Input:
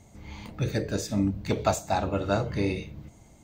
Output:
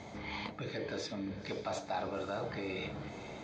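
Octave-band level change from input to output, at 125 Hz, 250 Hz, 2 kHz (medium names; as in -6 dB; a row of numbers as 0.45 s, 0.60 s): -15.5 dB, -12.0 dB, -5.0 dB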